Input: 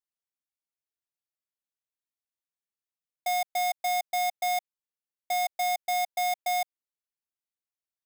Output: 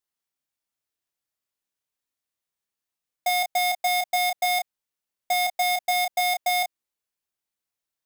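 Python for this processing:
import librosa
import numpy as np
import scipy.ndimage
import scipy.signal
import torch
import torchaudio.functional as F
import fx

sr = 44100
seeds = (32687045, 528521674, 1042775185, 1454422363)

y = fx.doubler(x, sr, ms=30.0, db=-5.5)
y = F.gain(torch.from_numpy(y), 5.5).numpy()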